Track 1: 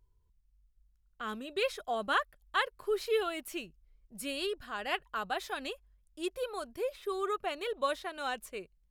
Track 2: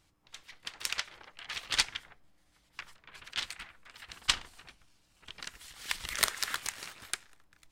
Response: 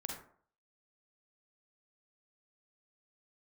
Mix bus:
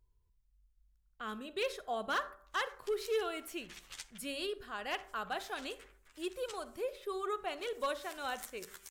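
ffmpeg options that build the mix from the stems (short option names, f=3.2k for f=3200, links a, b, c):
-filter_complex "[0:a]bandreject=f=195.2:t=h:w=4,bandreject=f=390.4:t=h:w=4,bandreject=f=585.6:t=h:w=4,bandreject=f=780.8:t=h:w=4,bandreject=f=976:t=h:w=4,bandreject=f=1.1712k:t=h:w=4,bandreject=f=1.3664k:t=h:w=4,asoftclip=type=hard:threshold=-24.5dB,volume=-5dB,asplit=3[a][b][c];[b]volume=-9.5dB[d];[1:a]aexciter=amount=2.6:drive=6.2:freq=6.1k,acompressor=threshold=-37dB:ratio=2.5,asplit=2[e][f];[f]adelay=11.1,afreqshift=0.61[g];[e][g]amix=inputs=2:normalize=1,adelay=2200,volume=-10dB,asplit=2[h][i];[i]volume=-13.5dB[j];[c]apad=whole_len=437646[k];[h][k]sidechaincompress=threshold=-40dB:ratio=8:attack=5:release=292[l];[2:a]atrim=start_sample=2205[m];[d][j]amix=inputs=2:normalize=0[n];[n][m]afir=irnorm=-1:irlink=0[o];[a][l][o]amix=inputs=3:normalize=0"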